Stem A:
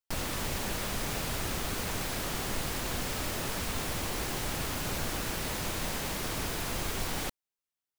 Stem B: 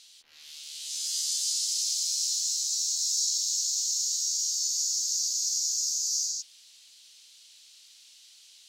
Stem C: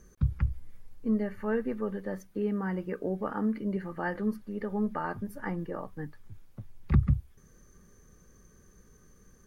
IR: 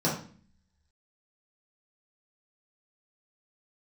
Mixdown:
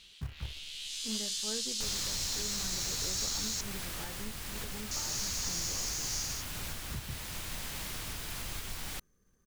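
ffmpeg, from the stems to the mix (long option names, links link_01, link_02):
-filter_complex "[0:a]equalizer=frequency=440:width=0.43:gain=-9.5,adelay=1700,volume=-2dB[link_01];[1:a]highshelf=frequency=4000:width_type=q:width=1.5:gain=-9,volume=2.5dB,asplit=3[link_02][link_03][link_04];[link_02]atrim=end=3.61,asetpts=PTS-STARTPTS,afade=type=out:start_time=3.606:duration=0.004:curve=hsin[link_05];[link_03]atrim=start=3.61:end=4.91,asetpts=PTS-STARTPTS,volume=0[link_06];[link_04]atrim=start=4.91,asetpts=PTS-STARTPTS,afade=type=in:duration=0.004:curve=hsin[link_07];[link_05][link_06][link_07]concat=n=3:v=0:a=1[link_08];[2:a]acrusher=bits=3:mode=log:mix=0:aa=0.000001,volume=-13dB[link_09];[link_01][link_09]amix=inputs=2:normalize=0,alimiter=level_in=4dB:limit=-24dB:level=0:latency=1:release=447,volume=-4dB,volume=0dB[link_10];[link_08][link_10]amix=inputs=2:normalize=0"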